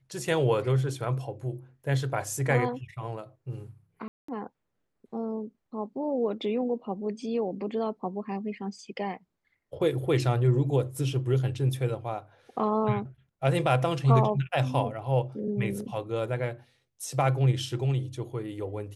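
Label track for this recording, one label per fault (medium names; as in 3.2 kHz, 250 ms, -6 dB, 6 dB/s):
4.080000	4.280000	dropout 204 ms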